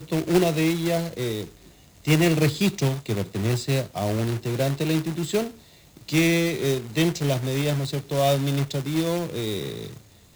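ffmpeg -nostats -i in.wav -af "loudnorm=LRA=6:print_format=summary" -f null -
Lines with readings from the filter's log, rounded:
Input Integrated:    -24.5 LUFS
Input True Peak:      -7.5 dBTP
Input LRA:             2.7 LU
Input Threshold:     -35.0 LUFS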